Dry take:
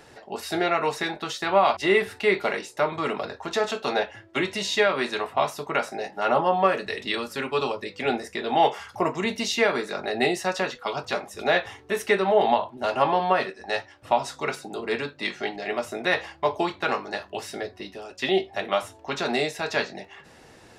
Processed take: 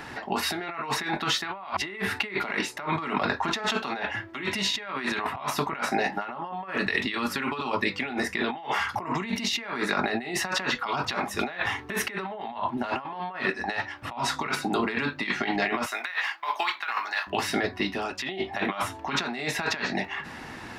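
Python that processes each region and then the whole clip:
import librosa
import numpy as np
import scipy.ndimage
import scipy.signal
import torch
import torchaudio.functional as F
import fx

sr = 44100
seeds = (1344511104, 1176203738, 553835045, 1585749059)

y = fx.chain(x, sr, fx.highpass(hz=1200.0, slope=12),
    fx.quant_float(bits=4), at=(15.86, 17.27))
y = fx.graphic_eq_10(y, sr, hz=(250, 500, 1000, 2000, 8000), db=(6, -8, 6, 5, -6))
y = fx.over_compress(y, sr, threshold_db=-32.0, ratio=-1.0)
y = F.gain(torch.from_numpy(y), 1.5).numpy()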